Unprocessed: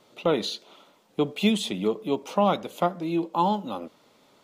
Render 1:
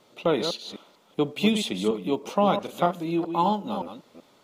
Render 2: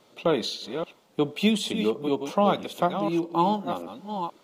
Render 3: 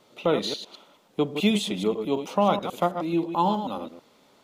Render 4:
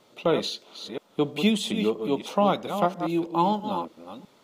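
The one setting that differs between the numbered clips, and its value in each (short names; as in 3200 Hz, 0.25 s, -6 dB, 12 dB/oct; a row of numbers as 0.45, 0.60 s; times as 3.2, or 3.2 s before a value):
reverse delay, time: 0.191, 0.546, 0.108, 0.327 s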